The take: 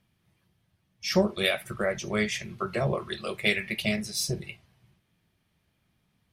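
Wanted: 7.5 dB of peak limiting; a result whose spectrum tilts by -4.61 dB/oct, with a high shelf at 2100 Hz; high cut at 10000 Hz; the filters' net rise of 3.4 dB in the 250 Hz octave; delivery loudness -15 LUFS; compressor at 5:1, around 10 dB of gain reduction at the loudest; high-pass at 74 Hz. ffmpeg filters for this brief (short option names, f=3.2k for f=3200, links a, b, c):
-af "highpass=74,lowpass=10k,equalizer=f=250:t=o:g=5,highshelf=f=2.1k:g=-6,acompressor=threshold=-26dB:ratio=5,volume=20dB,alimiter=limit=-3.5dB:level=0:latency=1"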